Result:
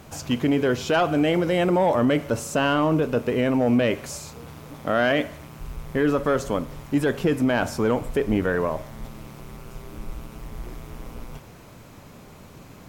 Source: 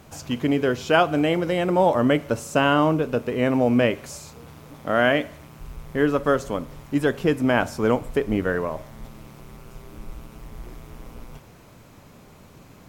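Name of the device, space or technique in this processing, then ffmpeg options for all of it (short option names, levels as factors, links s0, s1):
soft clipper into limiter: -af "asoftclip=type=tanh:threshold=0.299,alimiter=limit=0.158:level=0:latency=1:release=26,volume=1.41"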